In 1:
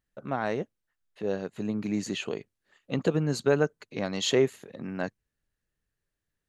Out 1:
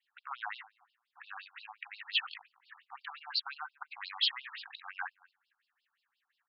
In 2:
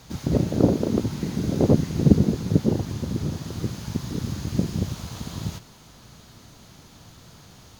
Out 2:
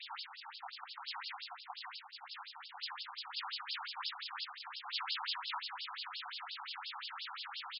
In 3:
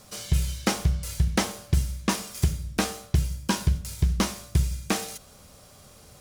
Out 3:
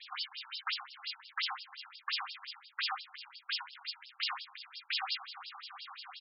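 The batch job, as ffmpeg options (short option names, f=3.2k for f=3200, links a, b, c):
-filter_complex "[0:a]adynamicequalizer=threshold=0.00224:dfrequency=4900:dqfactor=3.1:tfrequency=4900:tqfactor=3.1:attack=5:release=100:ratio=0.375:range=2:mode=boostabove:tftype=bell,areverse,acompressor=threshold=-33dB:ratio=5,areverse,alimiter=level_in=5.5dB:limit=-24dB:level=0:latency=1:release=45,volume=-5.5dB,asoftclip=type=tanh:threshold=-31dB,asplit=2[a][b];[b]adelay=229,lowpass=f=1.4k:p=1,volume=-21.5dB,asplit=2[c][d];[d]adelay=229,lowpass=f=1.4k:p=1,volume=0.27[e];[a][c][e]amix=inputs=3:normalize=0,afftfilt=real='re*between(b*sr/1024,980*pow(3900/980,0.5+0.5*sin(2*PI*5.7*pts/sr))/1.41,980*pow(3900/980,0.5+0.5*sin(2*PI*5.7*pts/sr))*1.41)':imag='im*between(b*sr/1024,980*pow(3900/980,0.5+0.5*sin(2*PI*5.7*pts/sr))/1.41,980*pow(3900/980,0.5+0.5*sin(2*PI*5.7*pts/sr))*1.41)':win_size=1024:overlap=0.75,volume=15dB"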